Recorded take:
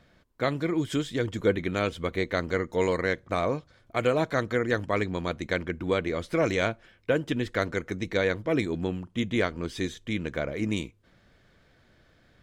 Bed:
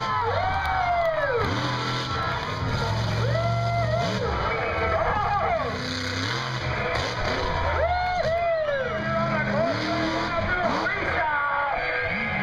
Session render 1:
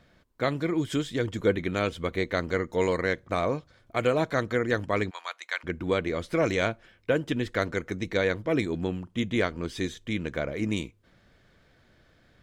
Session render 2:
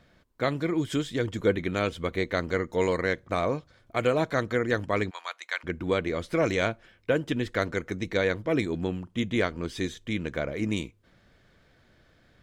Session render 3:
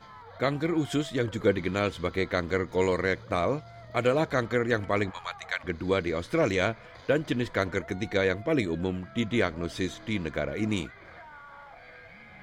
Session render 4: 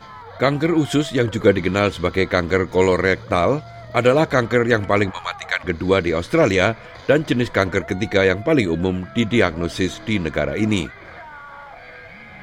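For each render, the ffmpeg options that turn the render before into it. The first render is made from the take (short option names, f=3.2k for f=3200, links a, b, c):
-filter_complex "[0:a]asplit=3[a][b][c];[a]afade=t=out:st=5.09:d=0.02[d];[b]highpass=f=870:w=0.5412,highpass=f=870:w=1.3066,afade=t=in:st=5.09:d=0.02,afade=t=out:st=5.63:d=0.02[e];[c]afade=t=in:st=5.63:d=0.02[f];[d][e][f]amix=inputs=3:normalize=0"
-af anull
-filter_complex "[1:a]volume=-23.5dB[a];[0:a][a]amix=inputs=2:normalize=0"
-af "volume=9.5dB"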